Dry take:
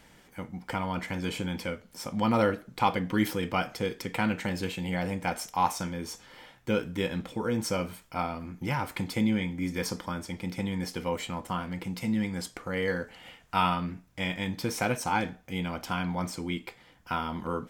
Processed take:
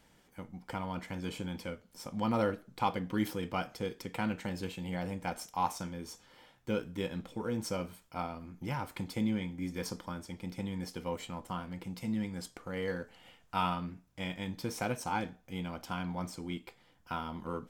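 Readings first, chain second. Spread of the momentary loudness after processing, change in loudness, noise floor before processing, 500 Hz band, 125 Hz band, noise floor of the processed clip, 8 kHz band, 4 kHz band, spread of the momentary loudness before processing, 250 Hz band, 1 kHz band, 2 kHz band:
10 LU, -6.0 dB, -58 dBFS, -6.0 dB, -5.5 dB, -66 dBFS, -7.0 dB, -7.5 dB, 9 LU, -5.5 dB, -6.0 dB, -8.5 dB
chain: peaking EQ 2 kHz -3.5 dB 0.77 oct; in parallel at -11 dB: hysteresis with a dead band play -28 dBFS; on the sum: trim -7.5 dB

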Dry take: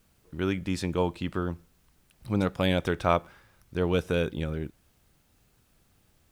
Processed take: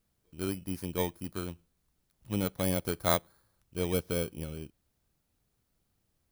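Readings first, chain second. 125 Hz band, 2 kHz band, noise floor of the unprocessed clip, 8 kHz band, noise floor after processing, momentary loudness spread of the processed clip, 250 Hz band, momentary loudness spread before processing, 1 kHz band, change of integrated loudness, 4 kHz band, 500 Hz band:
-5.5 dB, -7.0 dB, -67 dBFS, +8.0 dB, -78 dBFS, 13 LU, -5.5 dB, 11 LU, -6.5 dB, -4.5 dB, -3.0 dB, -5.5 dB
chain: bit-reversed sample order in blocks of 16 samples; upward expansion 1.5:1, over -37 dBFS; trim -3 dB

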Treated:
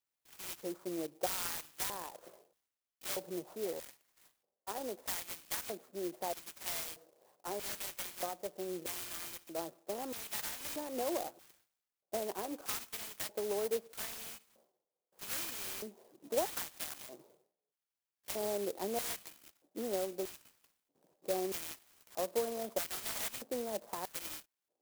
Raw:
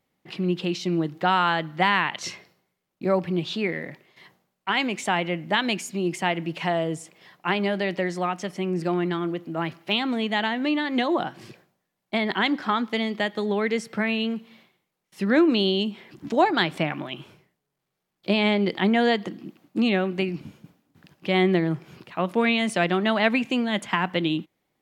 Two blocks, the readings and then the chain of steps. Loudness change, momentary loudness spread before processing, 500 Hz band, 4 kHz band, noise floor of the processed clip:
-14.5 dB, 11 LU, -13.0 dB, -16.0 dB, under -85 dBFS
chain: bit-reversed sample order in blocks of 16 samples; elliptic low-pass 8.1 kHz; bass shelf 340 Hz -11.5 dB; compression, threshold -25 dBFS, peak gain reduction 8 dB; LFO band-pass square 0.79 Hz 520–3400 Hz; sampling jitter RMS 0.1 ms; trim +1 dB

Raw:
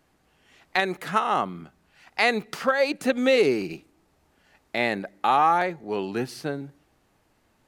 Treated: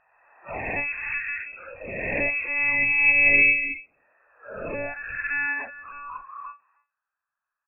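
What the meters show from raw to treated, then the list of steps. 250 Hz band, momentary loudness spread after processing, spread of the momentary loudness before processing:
-10.5 dB, 23 LU, 14 LU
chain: reverse spectral sustain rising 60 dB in 2.04 s; delay 305 ms -13.5 dB; high-pass sweep 100 Hz -> 1.1 kHz, 2.36–4.37 s; monotone LPC vocoder at 8 kHz 290 Hz; spectral noise reduction 15 dB; touch-sensitive phaser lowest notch 390 Hz, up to 1.3 kHz, full sweep at -20 dBFS; frequency inversion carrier 2.6 kHz; level-controlled noise filter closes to 880 Hz, open at -11.5 dBFS; tape noise reduction on one side only encoder only; trim -5 dB

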